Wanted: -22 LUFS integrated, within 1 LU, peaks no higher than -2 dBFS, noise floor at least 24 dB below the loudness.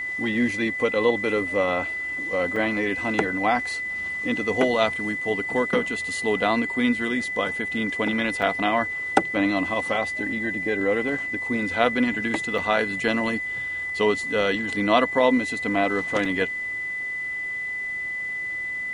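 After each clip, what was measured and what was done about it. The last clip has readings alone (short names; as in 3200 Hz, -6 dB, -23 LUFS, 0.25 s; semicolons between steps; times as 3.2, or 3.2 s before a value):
dropouts 4; longest dropout 3.8 ms; steady tone 2000 Hz; tone level -27 dBFS; loudness -24.0 LUFS; peak -2.5 dBFS; loudness target -22.0 LUFS
-> interpolate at 2.56/8.42/12.58/16.25, 3.8 ms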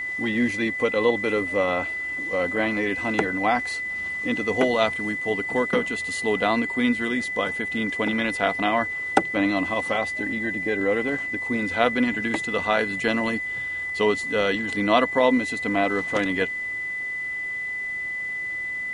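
dropouts 0; steady tone 2000 Hz; tone level -27 dBFS
-> notch 2000 Hz, Q 30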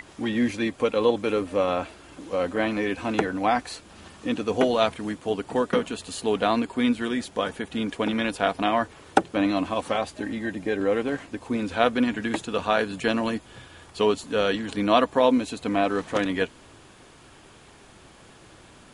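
steady tone none; loudness -25.5 LUFS; peak -2.5 dBFS; loudness target -22.0 LUFS
-> gain +3.5 dB; limiter -2 dBFS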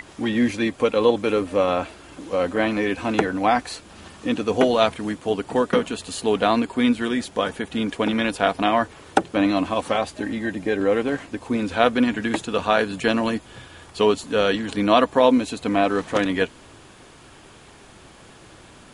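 loudness -22.0 LUFS; peak -2.0 dBFS; noise floor -47 dBFS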